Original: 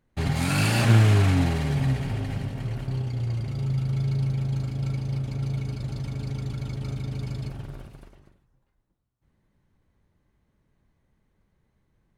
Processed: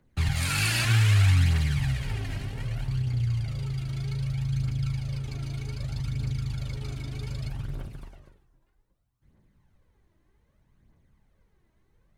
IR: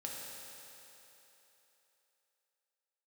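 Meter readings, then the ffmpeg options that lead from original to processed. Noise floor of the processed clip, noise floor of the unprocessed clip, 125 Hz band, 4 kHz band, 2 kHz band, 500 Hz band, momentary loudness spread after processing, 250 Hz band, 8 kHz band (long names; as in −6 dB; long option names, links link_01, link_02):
−69 dBFS, −72 dBFS, −2.0 dB, +2.0 dB, +0.5 dB, −11.0 dB, 14 LU, −8.0 dB, can't be measured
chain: -filter_complex "[0:a]aphaser=in_gain=1:out_gain=1:delay=3.2:decay=0.47:speed=0.64:type=triangular,acrossover=split=120|1300|3100[link_01][link_02][link_03][link_04];[link_02]acompressor=threshold=-40dB:ratio=10[link_05];[link_01][link_05][link_03][link_04]amix=inputs=4:normalize=0,volume=1dB"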